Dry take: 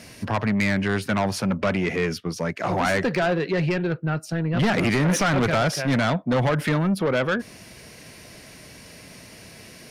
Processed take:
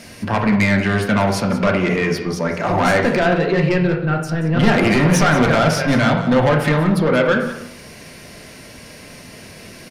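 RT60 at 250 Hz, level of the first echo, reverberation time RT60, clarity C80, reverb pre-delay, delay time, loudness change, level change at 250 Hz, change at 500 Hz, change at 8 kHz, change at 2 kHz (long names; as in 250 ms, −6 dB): 0.85 s, −14.0 dB, 0.80 s, 8.5 dB, 3 ms, 181 ms, +6.5 dB, +6.5 dB, +7.0 dB, +4.0 dB, +6.5 dB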